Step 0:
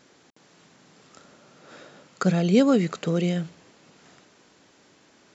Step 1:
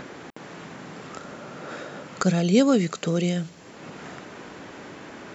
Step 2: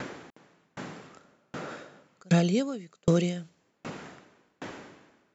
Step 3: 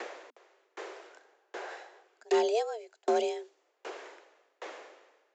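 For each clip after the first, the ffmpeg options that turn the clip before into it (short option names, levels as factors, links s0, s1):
-filter_complex "[0:a]highshelf=f=6400:g=11.5,acrossover=split=2600[s0][s1];[s0]acompressor=mode=upward:threshold=0.0562:ratio=2.5[s2];[s2][s1]amix=inputs=2:normalize=0"
-af "aeval=exprs='val(0)*pow(10,-38*if(lt(mod(1.3*n/s,1),2*abs(1.3)/1000),1-mod(1.3*n/s,1)/(2*abs(1.3)/1000),(mod(1.3*n/s,1)-2*abs(1.3)/1000)/(1-2*abs(1.3)/1000))/20)':c=same,volume=1.68"
-af "asoftclip=type=hard:threshold=0.133,afreqshift=220,aresample=16000,aresample=44100,volume=0.708"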